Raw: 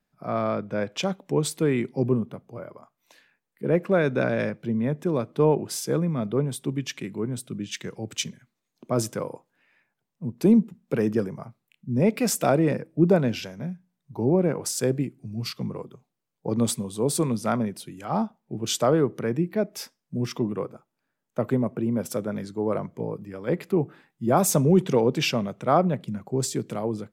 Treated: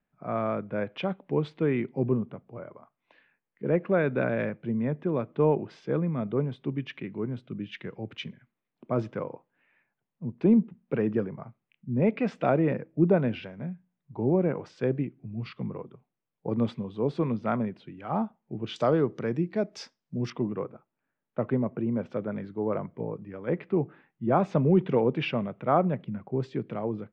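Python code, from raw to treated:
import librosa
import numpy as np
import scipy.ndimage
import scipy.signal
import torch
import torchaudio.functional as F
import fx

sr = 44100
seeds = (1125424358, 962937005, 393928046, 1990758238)

y = fx.lowpass(x, sr, hz=fx.steps((0.0, 2900.0), (18.76, 5700.0), (20.3, 2800.0)), slope=24)
y = y * librosa.db_to_amplitude(-3.0)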